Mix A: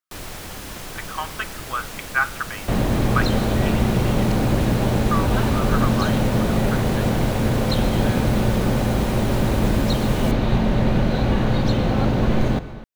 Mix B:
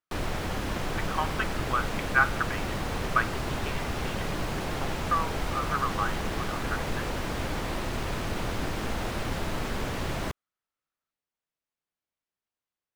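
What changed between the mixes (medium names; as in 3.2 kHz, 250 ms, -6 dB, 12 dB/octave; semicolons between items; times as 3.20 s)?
first sound +5.0 dB; second sound: muted; reverb: off; master: add low-pass 2 kHz 6 dB/octave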